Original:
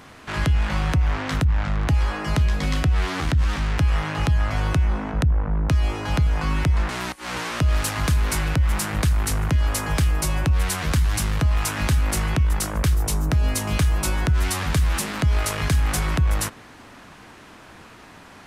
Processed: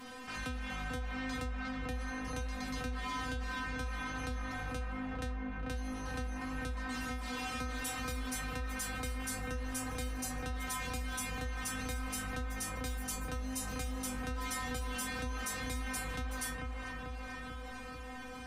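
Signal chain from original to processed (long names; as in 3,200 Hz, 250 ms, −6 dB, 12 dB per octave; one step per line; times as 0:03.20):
stiff-string resonator 250 Hz, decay 0.42 s, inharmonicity 0.002
on a send: delay with a low-pass on its return 442 ms, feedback 59%, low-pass 2,400 Hz, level −4 dB
on the sum: envelope flattener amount 50%
level +1 dB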